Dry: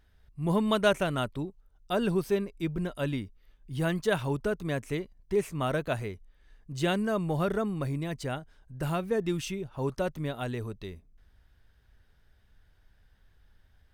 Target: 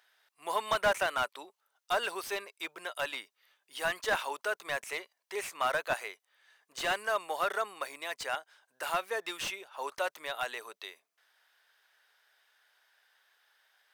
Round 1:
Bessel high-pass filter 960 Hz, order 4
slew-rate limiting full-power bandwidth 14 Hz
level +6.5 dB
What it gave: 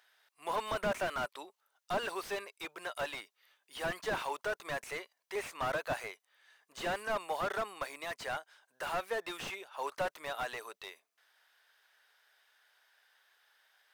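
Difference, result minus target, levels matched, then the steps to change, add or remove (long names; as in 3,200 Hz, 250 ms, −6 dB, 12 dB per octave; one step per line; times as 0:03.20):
slew-rate limiting: distortion +7 dB
change: slew-rate limiting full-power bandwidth 39.5 Hz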